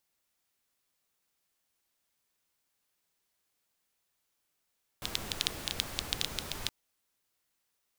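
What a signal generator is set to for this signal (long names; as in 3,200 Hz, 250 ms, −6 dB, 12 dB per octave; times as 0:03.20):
rain-like ticks over hiss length 1.67 s, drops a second 8.7, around 3,600 Hz, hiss −3 dB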